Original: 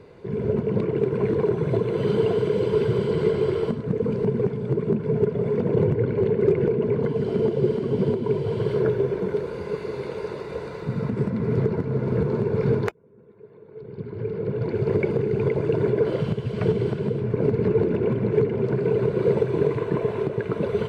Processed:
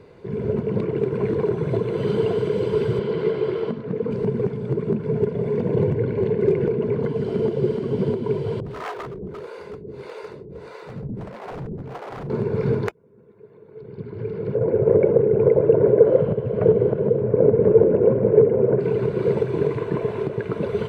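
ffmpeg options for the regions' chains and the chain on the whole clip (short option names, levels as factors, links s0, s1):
-filter_complex "[0:a]asettb=1/sr,asplit=3[s0][s1][s2];[s0]atrim=end=2.994[s3];[s1]atrim=start=2.99:end=4.11,asetpts=PTS-STARTPTS,afade=t=in:d=0.004:c=qsin,afade=t=out:st=1.116:d=0.004:c=qsin,highpass=150,lowpass=4200,bandreject=f=50:t=h:w=6,bandreject=f=100:t=h:w=6,bandreject=f=150:t=h:w=6,bandreject=f=200:t=h:w=6,bandreject=f=250:t=h:w=6,bandreject=f=300:t=h:w=6,bandreject=f=350:t=h:w=6,bandreject=f=400:t=h:w=6[s4];[s2]atrim=start=4.106[s5];[s3][s4]acrossfade=d=0.004:c1=hsin:c2=qsin[s6];[s6][s5]acrossfade=d=0.004:c1=qsin:c2=hsin,asettb=1/sr,asplit=3[s7][s8][s9];[s7]atrim=end=5.214[s10];[s8]atrim=start=5.21:end=6.59,asetpts=PTS-STARTPTS,afade=t=in:d=0.004:c=qsin,afade=t=out:st=1.376:d=0.004:c=qsin,bandreject=f=1300:w=7.7,asplit=2[s11][s12];[s12]adelay=48,volume=0.237[s13];[s11][s13]amix=inputs=2:normalize=0,atrim=end_sample=60858[s14];[s9]atrim=start=6.586[s15];[s10][s14]acrossfade=d=0.004:c1=hsin:c2=qsin[s16];[s16][s15]acrossfade=d=0.004:c1=qsin:c2=hsin,asettb=1/sr,asplit=3[s17][s18][s19];[s17]atrim=end=8.604[s20];[s18]atrim=start=8.6:end=12.3,asetpts=PTS-STARTPTS,afade=t=in:d=0.004:c=qsin,afade=t=out:st=3.696:d=0.004:c=qsin,aeval=exprs='0.075*(abs(mod(val(0)/0.075+3,4)-2)-1)':c=same,acrossover=split=410[s21][s22];[s21]aeval=exprs='val(0)*(1-1/2+1/2*cos(2*PI*1.6*n/s))':c=same[s23];[s22]aeval=exprs='val(0)*(1-1/2-1/2*cos(2*PI*1.6*n/s))':c=same[s24];[s23][s24]amix=inputs=2:normalize=0[s25];[s19]atrim=start=12.296[s26];[s20][s25]acrossfade=d=0.004:c1=hsin:c2=qsin[s27];[s27][s26]acrossfade=d=0.004:c1=qsin:c2=hsin,asettb=1/sr,asplit=3[s28][s29][s30];[s28]atrim=end=14.554[s31];[s29]atrim=start=14.55:end=18.8,asetpts=PTS-STARTPTS,afade=t=in:d=0.004:c=qsin,afade=t=out:st=4.246:d=0.004:c=qsin,lowpass=1500,equalizer=f=530:t=o:w=0.59:g=14[s32];[s30]atrim=start=18.796[s33];[s31][s32]acrossfade=d=0.004:c1=hsin:c2=qsin[s34];[s34][s33]acrossfade=d=0.004:c1=qsin:c2=hsin"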